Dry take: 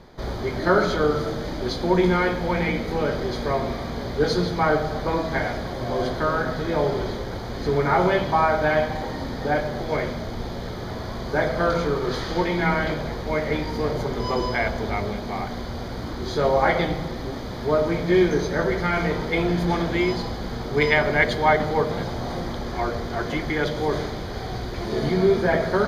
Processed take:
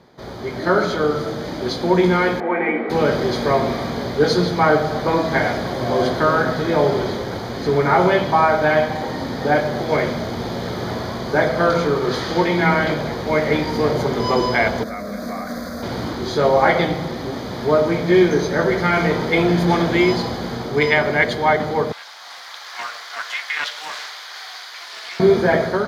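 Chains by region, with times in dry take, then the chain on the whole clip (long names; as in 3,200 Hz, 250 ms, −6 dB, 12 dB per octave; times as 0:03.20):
0:02.40–0:02.90: Chebyshev band-pass filter 230–2,200 Hz, order 3 + comb filter 2.6 ms, depth 39%
0:14.83–0:15.83: high-shelf EQ 8,100 Hz +8.5 dB + downward compressor 5 to 1, threshold −27 dBFS + phaser with its sweep stopped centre 580 Hz, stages 8
0:21.92–0:25.20: Bessel high-pass filter 1,600 Hz, order 4 + highs frequency-modulated by the lows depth 0.18 ms
whole clip: high-pass filter 110 Hz 12 dB per octave; automatic gain control gain up to 10 dB; level −2 dB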